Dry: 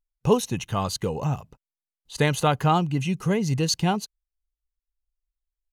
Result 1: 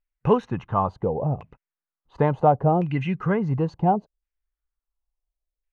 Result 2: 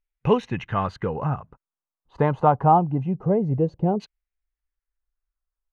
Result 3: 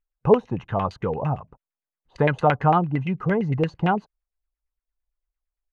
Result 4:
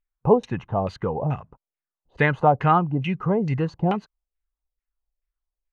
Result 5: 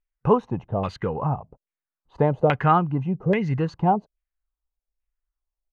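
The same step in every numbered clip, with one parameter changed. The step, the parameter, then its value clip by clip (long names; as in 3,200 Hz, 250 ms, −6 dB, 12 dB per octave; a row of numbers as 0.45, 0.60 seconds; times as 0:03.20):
auto-filter low-pass, speed: 0.71, 0.25, 8.8, 2.3, 1.2 Hertz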